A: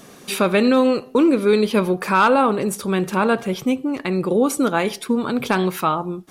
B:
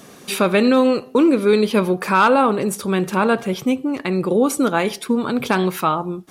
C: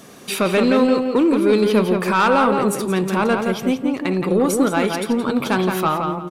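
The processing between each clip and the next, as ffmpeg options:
-af "highpass=41,volume=1.12"
-filter_complex "[0:a]asoftclip=type=tanh:threshold=0.335,asplit=2[s0][s1];[s1]adelay=171,lowpass=f=3700:p=1,volume=0.596,asplit=2[s2][s3];[s3]adelay=171,lowpass=f=3700:p=1,volume=0.28,asplit=2[s4][s5];[s5]adelay=171,lowpass=f=3700:p=1,volume=0.28,asplit=2[s6][s7];[s7]adelay=171,lowpass=f=3700:p=1,volume=0.28[s8];[s0][s2][s4][s6][s8]amix=inputs=5:normalize=0"

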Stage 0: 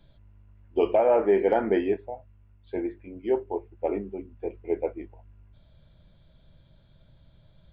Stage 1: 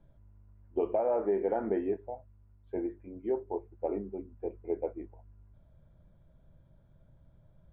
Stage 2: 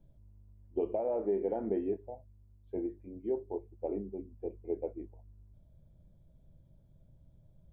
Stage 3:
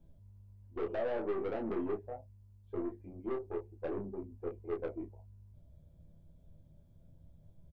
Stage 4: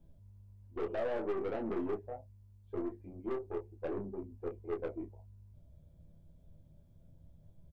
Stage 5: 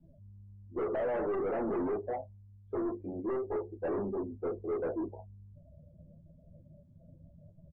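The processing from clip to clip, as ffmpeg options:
-af "lowpass=1300,acompressor=threshold=0.0562:ratio=2,volume=0.668"
-af "equalizer=f=1400:t=o:w=1.6:g=-14"
-filter_complex "[0:a]aeval=exprs='(tanh(50.1*val(0)+0.25)-tanh(0.25))/50.1':c=same,asplit=2[s0][s1];[s1]aecho=0:1:12|31:0.631|0.531[s2];[s0][s2]amix=inputs=2:normalize=0"
-af "aeval=exprs='clip(val(0),-1,0.0211)':c=same"
-filter_complex "[0:a]asplit=2[s0][s1];[s1]highpass=f=720:p=1,volume=22.4,asoftclip=type=tanh:threshold=0.0531[s2];[s0][s2]amix=inputs=2:normalize=0,lowpass=f=1100:p=1,volume=0.501,afftdn=nr=24:nf=-47"

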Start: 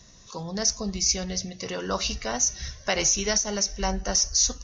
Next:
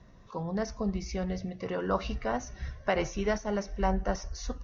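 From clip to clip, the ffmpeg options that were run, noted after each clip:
-af "lowpass=1600"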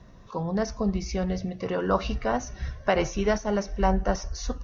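-af "equalizer=f=2000:w=5.4:g=-3,volume=1.78"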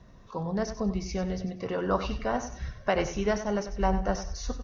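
-af "aecho=1:1:96|192|288:0.282|0.0676|0.0162,volume=0.708"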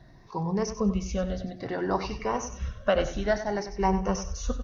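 -af "afftfilt=real='re*pow(10,11/40*sin(2*PI*(0.79*log(max(b,1)*sr/1024/100)/log(2)-(0.59)*(pts-256)/sr)))':imag='im*pow(10,11/40*sin(2*PI*(0.79*log(max(b,1)*sr/1024/100)/log(2)-(0.59)*(pts-256)/sr)))':win_size=1024:overlap=0.75"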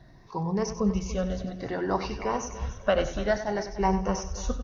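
-af "aecho=1:1:290|580|870:0.188|0.0659|0.0231"

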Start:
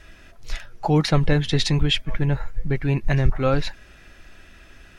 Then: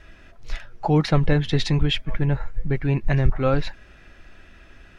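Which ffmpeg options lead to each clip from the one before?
-af "lowpass=f=3100:p=1"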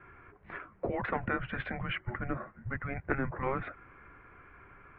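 -af "highpass=f=160:t=q:w=0.5412,highpass=f=160:t=q:w=1.307,lowpass=f=2400:t=q:w=0.5176,lowpass=f=2400:t=q:w=0.7071,lowpass=f=2400:t=q:w=1.932,afreqshift=-270,afftfilt=real='re*lt(hypot(re,im),0.355)':imag='im*lt(hypot(re,im),0.355)':win_size=1024:overlap=0.75,volume=0.891"

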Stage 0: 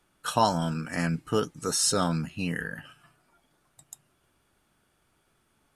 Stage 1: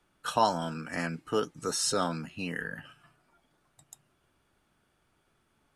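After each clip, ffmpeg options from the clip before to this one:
-filter_complex "[0:a]highshelf=f=7400:g=-7.5,acrossover=split=230[s0][s1];[s0]acompressor=threshold=0.00794:ratio=6[s2];[s2][s1]amix=inputs=2:normalize=0,volume=0.841"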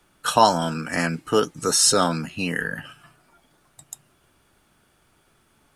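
-af "highshelf=f=5700:g=6,volume=2.82"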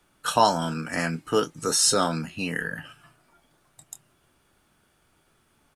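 -filter_complex "[0:a]asplit=2[s0][s1];[s1]adelay=25,volume=0.251[s2];[s0][s2]amix=inputs=2:normalize=0,volume=0.668"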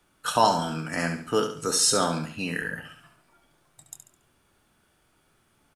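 -af "aecho=1:1:70|140|210|280:0.398|0.147|0.0545|0.0202,volume=0.841"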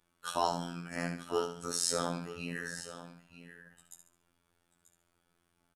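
-af "aecho=1:1:936:0.211,afftfilt=real='hypot(re,im)*cos(PI*b)':imag='0':win_size=2048:overlap=0.75,volume=0.447"

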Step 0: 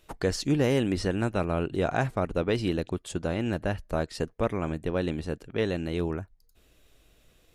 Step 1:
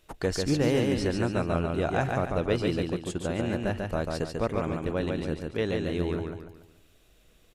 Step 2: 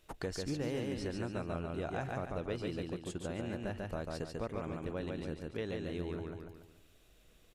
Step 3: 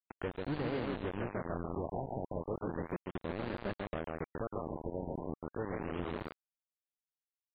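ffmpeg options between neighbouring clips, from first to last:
-af "aecho=1:1:143|286|429|572|715:0.668|0.261|0.102|0.0396|0.0155,volume=0.841"
-af "acompressor=threshold=0.0141:ratio=2,volume=0.668"
-af "acrusher=bits=5:mix=0:aa=0.000001,adynamicsmooth=sensitivity=3:basefreq=1800,afftfilt=real='re*lt(b*sr/1024,960*pow(4900/960,0.5+0.5*sin(2*PI*0.35*pts/sr)))':imag='im*lt(b*sr/1024,960*pow(4900/960,0.5+0.5*sin(2*PI*0.35*pts/sr)))':win_size=1024:overlap=0.75"

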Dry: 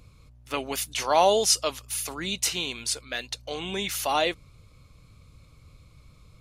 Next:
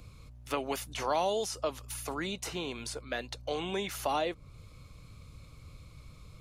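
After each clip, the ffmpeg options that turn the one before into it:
-filter_complex "[0:a]acrossover=split=370|1400[s0][s1][s2];[s0]acompressor=threshold=0.00794:ratio=4[s3];[s1]acompressor=threshold=0.0224:ratio=4[s4];[s2]acompressor=threshold=0.00631:ratio=4[s5];[s3][s4][s5]amix=inputs=3:normalize=0,volume=1.26"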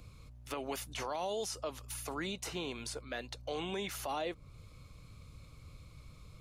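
-af "alimiter=level_in=1.19:limit=0.0631:level=0:latency=1:release=71,volume=0.841,volume=0.75"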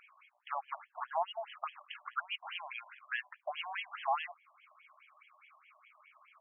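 -af "lowpass=f=6200:t=q:w=4.9,afftfilt=real='re*between(b*sr/1024,800*pow(2400/800,0.5+0.5*sin(2*PI*4.8*pts/sr))/1.41,800*pow(2400/800,0.5+0.5*sin(2*PI*4.8*pts/sr))*1.41)':imag='im*between(b*sr/1024,800*pow(2400/800,0.5+0.5*sin(2*PI*4.8*pts/sr))/1.41,800*pow(2400/800,0.5+0.5*sin(2*PI*4.8*pts/sr))*1.41)':win_size=1024:overlap=0.75,volume=2.51"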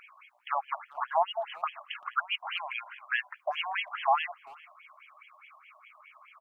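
-filter_complex "[0:a]asplit=2[s0][s1];[s1]adelay=390,highpass=300,lowpass=3400,asoftclip=type=hard:threshold=0.0316,volume=0.0794[s2];[s0][s2]amix=inputs=2:normalize=0,volume=2.37"

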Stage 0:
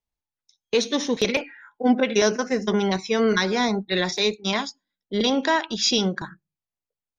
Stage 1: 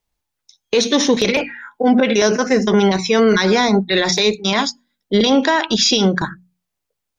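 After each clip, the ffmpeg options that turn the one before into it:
-af "bandreject=f=60:t=h:w=6,bandreject=f=120:t=h:w=6,bandreject=f=180:t=h:w=6,bandreject=f=240:t=h:w=6,alimiter=level_in=6.68:limit=0.891:release=50:level=0:latency=1,volume=0.596"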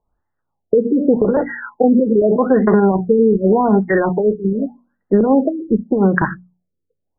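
-af "acompressor=threshold=0.178:ratio=6,aexciter=amount=2.6:drive=9.1:freq=3400,afftfilt=real='re*lt(b*sr/1024,510*pow(2100/510,0.5+0.5*sin(2*PI*0.84*pts/sr)))':imag='im*lt(b*sr/1024,510*pow(2100/510,0.5+0.5*sin(2*PI*0.84*pts/sr)))':win_size=1024:overlap=0.75,volume=2.11"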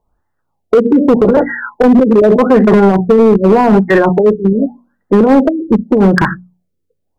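-af "asoftclip=type=hard:threshold=0.316,volume=2.24"

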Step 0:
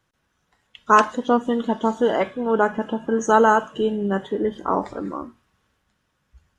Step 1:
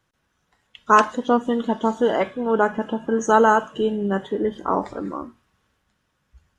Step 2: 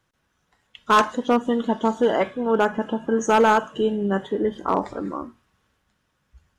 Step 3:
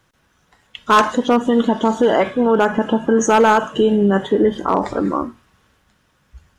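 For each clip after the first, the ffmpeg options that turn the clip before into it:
-af anull
-af "volume=3.35,asoftclip=hard,volume=0.299"
-af "alimiter=level_in=5.96:limit=0.891:release=50:level=0:latency=1,volume=0.531"

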